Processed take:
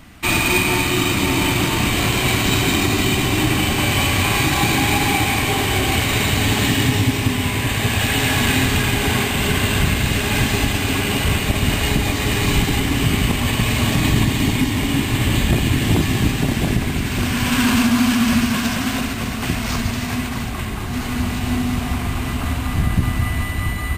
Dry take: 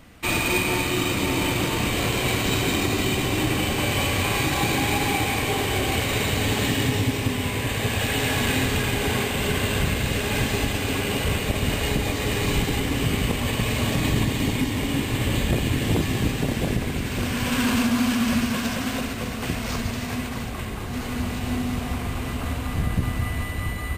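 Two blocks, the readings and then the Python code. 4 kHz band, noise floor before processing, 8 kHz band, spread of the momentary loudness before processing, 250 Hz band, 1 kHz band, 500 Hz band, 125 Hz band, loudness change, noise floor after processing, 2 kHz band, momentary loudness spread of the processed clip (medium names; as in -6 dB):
+6.0 dB, -30 dBFS, +6.0 dB, 6 LU, +5.5 dB, +5.5 dB, +2.0 dB, +6.0 dB, +5.5 dB, -24 dBFS, +6.0 dB, 6 LU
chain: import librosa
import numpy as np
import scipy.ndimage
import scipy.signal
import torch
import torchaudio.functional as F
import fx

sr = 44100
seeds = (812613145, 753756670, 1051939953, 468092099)

y = fx.peak_eq(x, sr, hz=500.0, db=-10.0, octaves=0.4)
y = F.gain(torch.from_numpy(y), 6.0).numpy()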